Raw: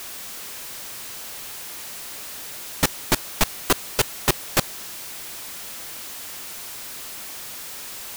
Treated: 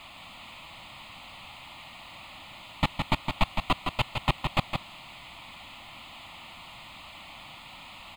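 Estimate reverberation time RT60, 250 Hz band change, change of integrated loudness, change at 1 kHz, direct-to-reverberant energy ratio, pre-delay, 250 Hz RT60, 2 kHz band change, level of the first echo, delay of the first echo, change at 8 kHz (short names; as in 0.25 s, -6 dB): none, -4.0 dB, -7.0 dB, -1.0 dB, none, none, none, -5.0 dB, -5.5 dB, 0.163 s, -24.5 dB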